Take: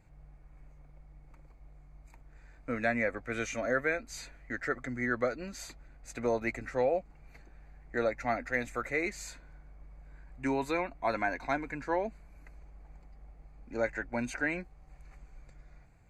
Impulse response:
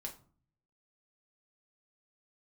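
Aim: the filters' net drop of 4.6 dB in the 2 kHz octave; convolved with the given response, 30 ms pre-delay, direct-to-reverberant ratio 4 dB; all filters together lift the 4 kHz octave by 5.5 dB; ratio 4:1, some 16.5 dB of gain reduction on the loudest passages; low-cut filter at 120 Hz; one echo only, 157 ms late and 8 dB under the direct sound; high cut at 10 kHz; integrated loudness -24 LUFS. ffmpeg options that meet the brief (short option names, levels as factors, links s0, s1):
-filter_complex "[0:a]highpass=120,lowpass=10000,equalizer=f=2000:t=o:g=-7.5,equalizer=f=4000:t=o:g=8,acompressor=threshold=0.00501:ratio=4,aecho=1:1:157:0.398,asplit=2[s0][s1];[1:a]atrim=start_sample=2205,adelay=30[s2];[s1][s2]afir=irnorm=-1:irlink=0,volume=0.841[s3];[s0][s3]amix=inputs=2:normalize=0,volume=13.3"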